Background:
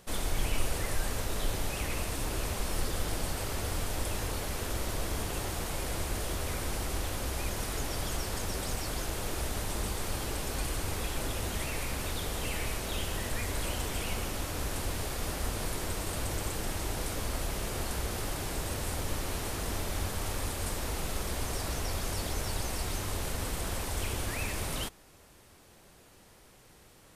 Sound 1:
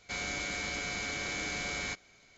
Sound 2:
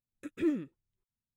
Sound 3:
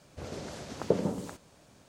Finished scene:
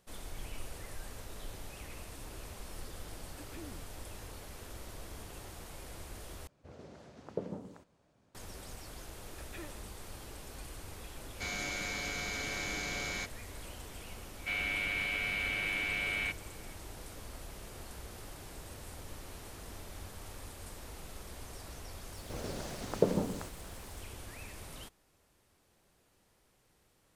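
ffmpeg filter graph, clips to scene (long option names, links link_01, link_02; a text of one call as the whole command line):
ffmpeg -i bed.wav -i cue0.wav -i cue1.wav -i cue2.wav -filter_complex "[2:a]asplit=2[link_01][link_02];[3:a]asplit=2[link_03][link_04];[1:a]asplit=2[link_05][link_06];[0:a]volume=-13dB[link_07];[link_01]acompressor=threshold=-44dB:ratio=6:attack=3.2:release=140:knee=1:detection=peak[link_08];[link_03]highshelf=frequency=3300:gain=-10.5[link_09];[link_02]highpass=frequency=550:width=0.5412,highpass=frequency=550:width=1.3066[link_10];[link_06]lowpass=frequency=2700:width_type=q:width=4.5[link_11];[link_04]acrusher=bits=9:mix=0:aa=0.000001[link_12];[link_07]asplit=2[link_13][link_14];[link_13]atrim=end=6.474[link_15];[link_09]atrim=end=1.88,asetpts=PTS-STARTPTS,volume=-11dB[link_16];[link_14]atrim=start=8.346[link_17];[link_08]atrim=end=1.36,asetpts=PTS-STARTPTS,volume=-3.5dB,afade=type=in:duration=0.004:curve=hsin,afade=type=out:start_time=1.356:duration=0.004:curve=hsin,adelay=3150[link_18];[link_10]atrim=end=1.36,asetpts=PTS-STARTPTS,volume=-2.5dB,afade=type=in:duration=0.004:curve=hsin,afade=type=out:start_time=1.356:duration=0.004:curve=hsin,adelay=9150[link_19];[link_05]atrim=end=2.37,asetpts=PTS-STARTPTS,volume=-2dB,afade=type=in:duration=0.004:curve=hsin,afade=type=out:start_time=2.366:duration=0.004:curve=hsin,adelay=11310[link_20];[link_11]atrim=end=2.37,asetpts=PTS-STARTPTS,volume=-5dB,afade=type=in:duration=0.004:curve=hsin,afade=type=out:start_time=2.366:duration=0.004:curve=hsin,adelay=14370[link_21];[link_12]atrim=end=1.88,asetpts=PTS-STARTPTS,volume=-1dB,afade=type=in:duration=0.004:curve=hsin,afade=type=out:start_time=1.876:duration=0.004:curve=hsin,adelay=975492S[link_22];[link_15][link_16]acrossfade=duration=0.004:curve1=hsin:curve2=hsin[link_23];[link_23][link_17]acrossfade=duration=0.004:curve1=hsin:curve2=hsin[link_24];[link_24][link_18][link_19][link_20][link_21][link_22]amix=inputs=6:normalize=0" out.wav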